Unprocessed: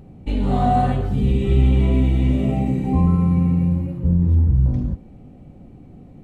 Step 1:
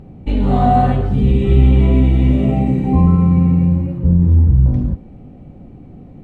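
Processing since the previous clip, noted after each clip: low-pass 3.3 kHz 6 dB/octave; trim +5 dB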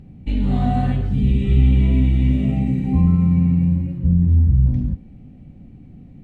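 high-order bell 680 Hz -9 dB 2.3 oct; trim -3.5 dB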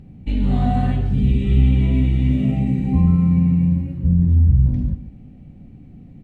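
delay 145 ms -13.5 dB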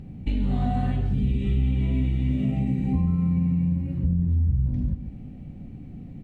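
compression 3:1, threshold -25 dBFS, peak gain reduction 11.5 dB; trim +2 dB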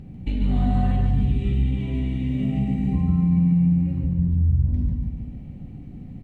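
feedback delay 144 ms, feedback 48%, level -5.5 dB

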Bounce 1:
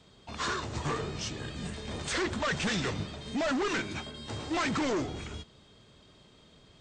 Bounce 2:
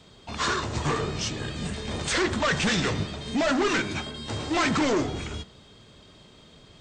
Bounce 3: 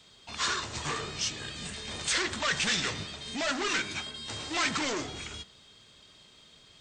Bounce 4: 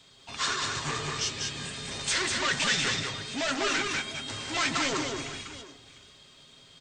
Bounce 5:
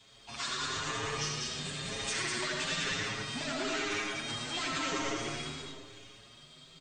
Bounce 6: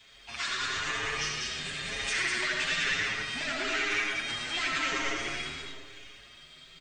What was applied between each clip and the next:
de-hum 64.95 Hz, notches 30; trim +6.5 dB
tilt shelf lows -6.5 dB, about 1.2 kHz; trim -5.5 dB
comb 7.4 ms, depth 39%; on a send: multi-tap echo 196/700 ms -3.5/-16.5 dB
compression 3:1, threshold -32 dBFS, peak gain reduction 8 dB; reverberation RT60 1.0 s, pre-delay 45 ms, DRR 0 dB; endless flanger 7 ms +0.99 Hz
graphic EQ 125/250/500/1000/2000/4000/8000 Hz -12/-7/-6/-7/+4/-4/-8 dB; trim +7 dB

